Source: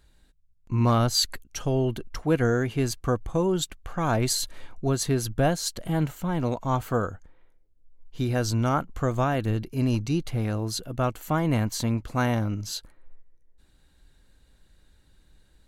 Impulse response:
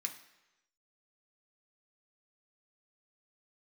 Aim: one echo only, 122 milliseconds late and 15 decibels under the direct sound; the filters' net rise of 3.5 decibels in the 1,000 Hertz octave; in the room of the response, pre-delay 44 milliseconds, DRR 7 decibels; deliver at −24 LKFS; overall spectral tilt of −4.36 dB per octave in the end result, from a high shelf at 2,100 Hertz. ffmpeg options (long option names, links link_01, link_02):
-filter_complex "[0:a]equalizer=frequency=1000:width_type=o:gain=3.5,highshelf=frequency=2100:gain=4.5,aecho=1:1:122:0.178,asplit=2[link_01][link_02];[1:a]atrim=start_sample=2205,adelay=44[link_03];[link_02][link_03]afir=irnorm=-1:irlink=0,volume=-6.5dB[link_04];[link_01][link_04]amix=inputs=2:normalize=0,volume=0.5dB"